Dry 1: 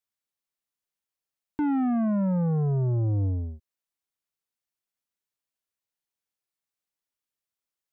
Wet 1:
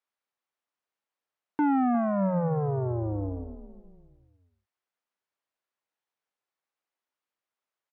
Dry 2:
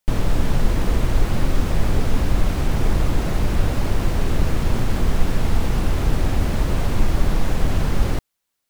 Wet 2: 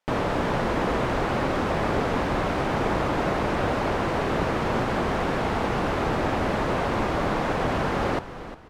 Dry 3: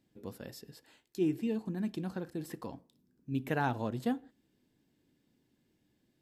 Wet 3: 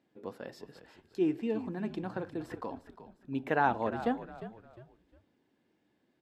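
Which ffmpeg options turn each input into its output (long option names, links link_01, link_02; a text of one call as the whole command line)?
ffmpeg -i in.wav -filter_complex "[0:a]bandpass=frequency=900:width_type=q:width=0.62:csg=0,asplit=4[link_01][link_02][link_03][link_04];[link_02]adelay=354,afreqshift=-59,volume=-13dB[link_05];[link_03]adelay=708,afreqshift=-118,volume=-22.6dB[link_06];[link_04]adelay=1062,afreqshift=-177,volume=-32.3dB[link_07];[link_01][link_05][link_06][link_07]amix=inputs=4:normalize=0,volume=6.5dB" out.wav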